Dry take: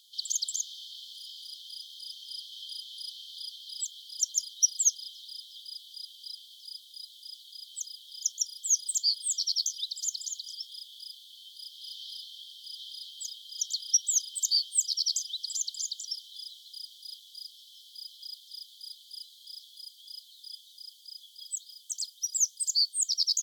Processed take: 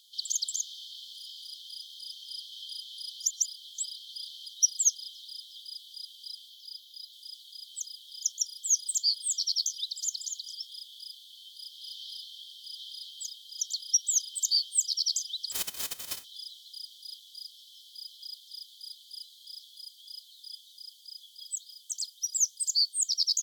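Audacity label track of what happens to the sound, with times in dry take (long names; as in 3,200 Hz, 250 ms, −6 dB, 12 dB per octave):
3.200000	4.450000	reverse
6.500000	7.130000	parametric band 8,600 Hz −12 dB 0.3 octaves
13.270000	14.060000	Bessel high-pass filter 3,000 Hz
15.510000	16.230000	spectral envelope flattened exponent 0.1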